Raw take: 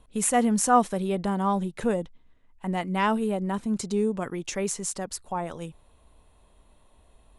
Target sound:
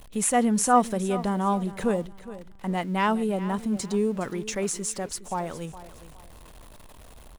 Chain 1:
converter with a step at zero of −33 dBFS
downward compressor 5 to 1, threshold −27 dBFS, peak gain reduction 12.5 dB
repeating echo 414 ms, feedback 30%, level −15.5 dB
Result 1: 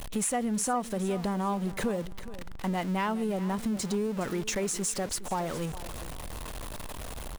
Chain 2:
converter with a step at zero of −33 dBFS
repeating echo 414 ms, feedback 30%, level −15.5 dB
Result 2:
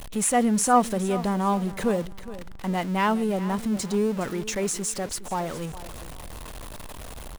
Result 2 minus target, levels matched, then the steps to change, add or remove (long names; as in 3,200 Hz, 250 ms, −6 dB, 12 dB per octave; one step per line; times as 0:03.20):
converter with a step at zero: distortion +10 dB
change: converter with a step at zero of −44 dBFS